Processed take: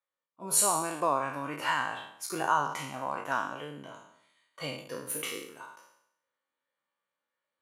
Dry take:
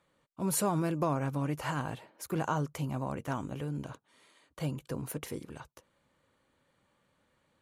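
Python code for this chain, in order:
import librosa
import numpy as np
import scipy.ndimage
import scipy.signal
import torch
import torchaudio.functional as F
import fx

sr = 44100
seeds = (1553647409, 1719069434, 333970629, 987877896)

p1 = fx.spec_trails(x, sr, decay_s=1.12)
p2 = fx.highpass(p1, sr, hz=1100.0, slope=6)
p3 = fx.dynamic_eq(p2, sr, hz=3700.0, q=0.73, threshold_db=-49.0, ratio=4.0, max_db=4)
p4 = fx.rider(p3, sr, range_db=4, speed_s=0.5)
p5 = p3 + F.gain(torch.from_numpy(p4), -1.0).numpy()
y = fx.spectral_expand(p5, sr, expansion=1.5)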